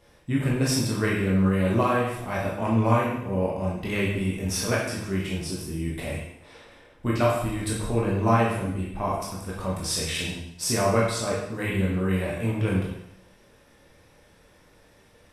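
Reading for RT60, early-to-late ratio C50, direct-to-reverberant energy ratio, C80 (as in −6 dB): 0.80 s, 2.0 dB, −5.0 dB, 5.0 dB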